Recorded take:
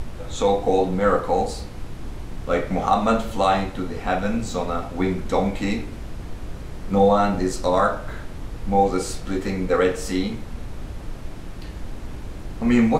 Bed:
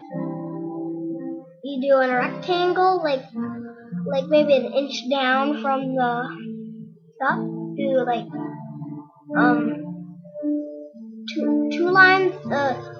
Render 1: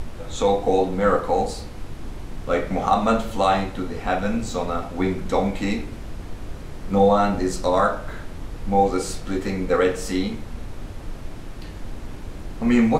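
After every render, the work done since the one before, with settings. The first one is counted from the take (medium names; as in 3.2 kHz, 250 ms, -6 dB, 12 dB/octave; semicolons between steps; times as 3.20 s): de-hum 60 Hz, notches 3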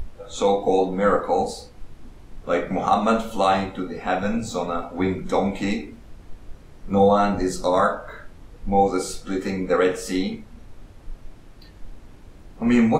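noise print and reduce 11 dB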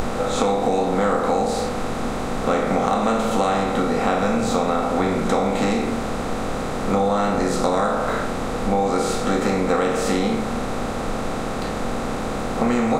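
spectral levelling over time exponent 0.4; compression, threshold -16 dBFS, peak gain reduction 8 dB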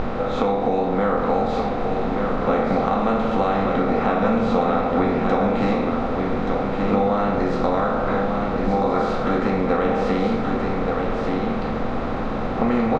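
distance through air 270 m; delay 1178 ms -4.5 dB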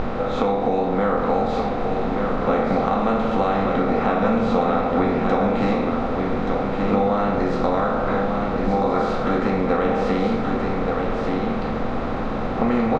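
no audible change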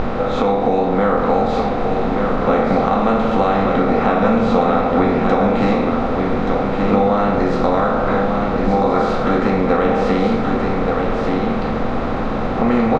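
trim +4.5 dB; peak limiter -3 dBFS, peak gain reduction 1.5 dB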